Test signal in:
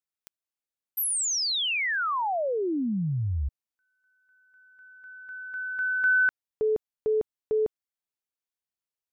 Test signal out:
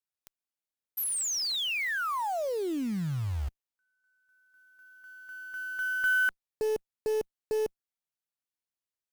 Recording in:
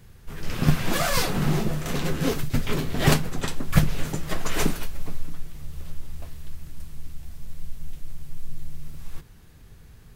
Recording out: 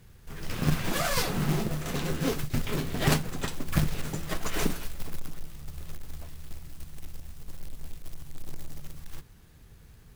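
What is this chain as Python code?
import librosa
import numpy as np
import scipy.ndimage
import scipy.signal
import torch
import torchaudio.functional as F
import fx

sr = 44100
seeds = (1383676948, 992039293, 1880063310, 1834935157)

y = fx.tube_stage(x, sr, drive_db=10.0, bias=0.35)
y = fx.quant_float(y, sr, bits=2)
y = y * 10.0 ** (-2.5 / 20.0)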